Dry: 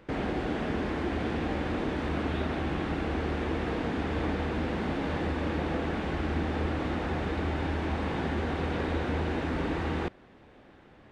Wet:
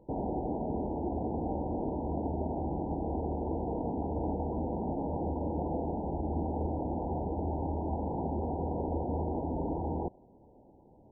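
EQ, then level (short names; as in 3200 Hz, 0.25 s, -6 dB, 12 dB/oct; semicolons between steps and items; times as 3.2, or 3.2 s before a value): dynamic EQ 730 Hz, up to +4 dB, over -49 dBFS; brick-wall FIR low-pass 1000 Hz; -3.0 dB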